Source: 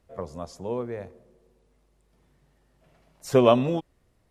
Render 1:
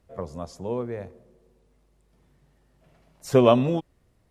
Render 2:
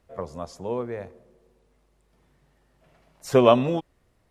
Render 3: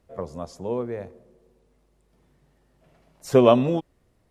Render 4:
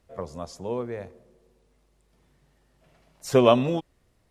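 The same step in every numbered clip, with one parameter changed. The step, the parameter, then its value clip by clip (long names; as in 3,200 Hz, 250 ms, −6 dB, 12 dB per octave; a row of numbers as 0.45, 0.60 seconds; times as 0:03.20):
parametric band, centre frequency: 110, 1,400, 300, 4,900 Hertz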